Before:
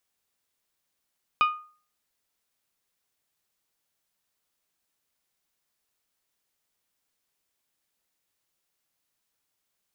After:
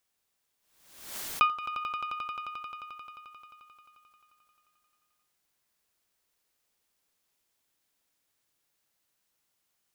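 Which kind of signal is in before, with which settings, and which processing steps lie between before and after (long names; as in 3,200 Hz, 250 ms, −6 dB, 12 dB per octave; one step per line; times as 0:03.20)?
struck glass bell, lowest mode 1,230 Hz, decay 0.42 s, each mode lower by 7 dB, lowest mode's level −15.5 dB
on a send: echo that builds up and dies away 88 ms, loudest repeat 5, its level −12.5 dB
on the sum: background raised ahead of every attack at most 71 dB per second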